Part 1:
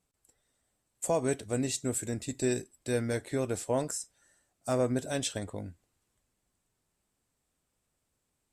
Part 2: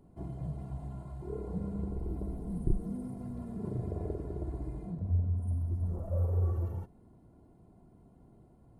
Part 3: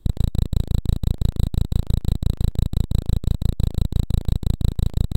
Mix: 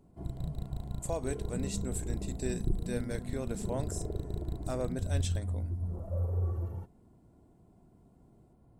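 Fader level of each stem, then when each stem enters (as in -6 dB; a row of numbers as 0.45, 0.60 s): -7.0, -2.0, -19.0 dB; 0.00, 0.00, 0.20 s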